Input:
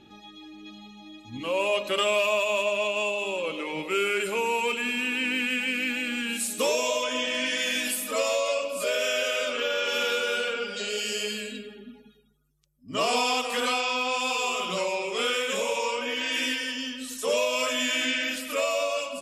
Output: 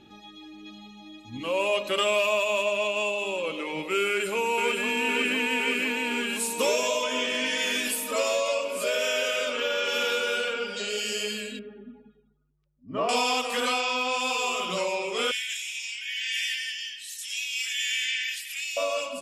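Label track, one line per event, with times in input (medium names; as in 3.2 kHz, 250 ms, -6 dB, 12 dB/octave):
4.060000	4.830000	echo throw 510 ms, feedback 80%, level -4.5 dB
11.590000	13.090000	low-pass 1.4 kHz
15.310000	18.770000	elliptic high-pass 1.8 kHz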